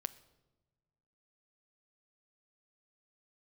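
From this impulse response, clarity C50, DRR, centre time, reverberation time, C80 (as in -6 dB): 17.5 dB, 12.5 dB, 3 ms, no single decay rate, 19.5 dB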